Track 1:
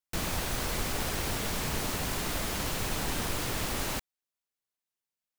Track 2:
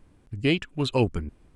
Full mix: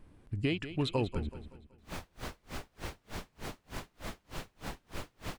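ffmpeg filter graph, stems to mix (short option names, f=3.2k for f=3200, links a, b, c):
-filter_complex "[0:a]highshelf=f=5.9k:g=-12,aeval=exprs='val(0)*pow(10,-37*(0.5-0.5*cos(2*PI*3.3*n/s))/20)':c=same,adelay=1650,volume=-4dB[a];[1:a]equalizer=f=6.9k:t=o:w=0.77:g=-4.5,acompressor=threshold=-27dB:ratio=6,volume=-1dB,asplit=2[b][c];[c]volume=-12.5dB,aecho=0:1:188|376|564|752|940|1128:1|0.4|0.16|0.064|0.0256|0.0102[d];[a][b][d]amix=inputs=3:normalize=0"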